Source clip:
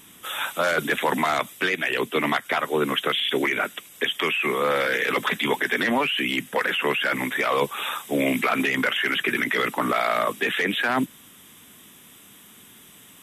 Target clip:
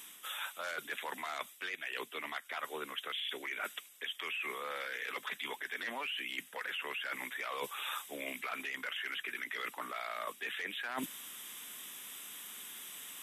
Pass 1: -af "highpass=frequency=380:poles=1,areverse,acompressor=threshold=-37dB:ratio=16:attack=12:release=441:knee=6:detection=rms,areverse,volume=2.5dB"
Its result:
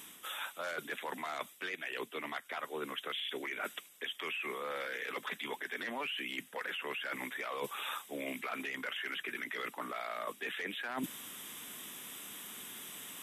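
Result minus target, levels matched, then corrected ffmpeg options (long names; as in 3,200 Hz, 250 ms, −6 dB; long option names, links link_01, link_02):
500 Hz band +3.5 dB
-af "highpass=frequency=1200:poles=1,areverse,acompressor=threshold=-37dB:ratio=16:attack=12:release=441:knee=6:detection=rms,areverse,volume=2.5dB"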